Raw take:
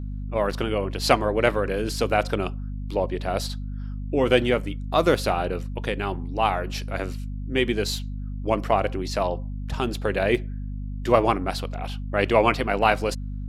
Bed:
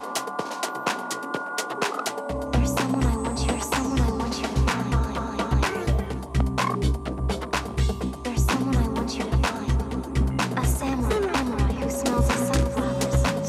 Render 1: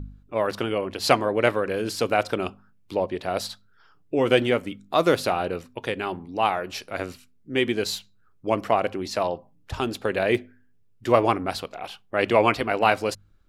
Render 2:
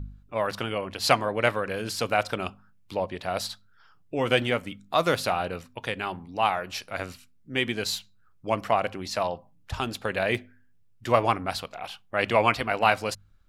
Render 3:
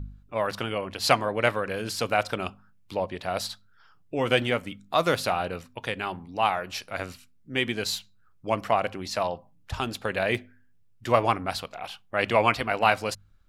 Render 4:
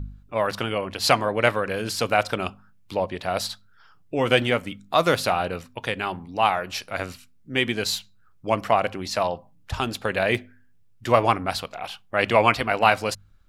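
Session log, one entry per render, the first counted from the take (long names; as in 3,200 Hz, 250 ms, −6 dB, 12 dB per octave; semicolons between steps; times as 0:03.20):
hum removal 50 Hz, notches 5
parametric band 360 Hz −8.5 dB 1.1 octaves
no processing that can be heard
level +3.5 dB; brickwall limiter −2 dBFS, peak gain reduction 2 dB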